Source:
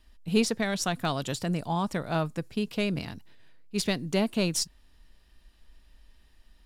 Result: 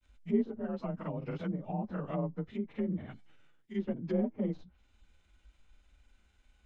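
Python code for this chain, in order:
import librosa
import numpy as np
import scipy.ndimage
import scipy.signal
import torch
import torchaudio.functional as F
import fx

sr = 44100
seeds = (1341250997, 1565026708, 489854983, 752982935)

y = fx.partial_stretch(x, sr, pct=90)
y = fx.env_lowpass_down(y, sr, base_hz=640.0, full_db=-27.0)
y = fx.granulator(y, sr, seeds[0], grain_ms=100.0, per_s=20.0, spray_ms=32.0, spread_st=0)
y = y * 10.0 ** (-2.5 / 20.0)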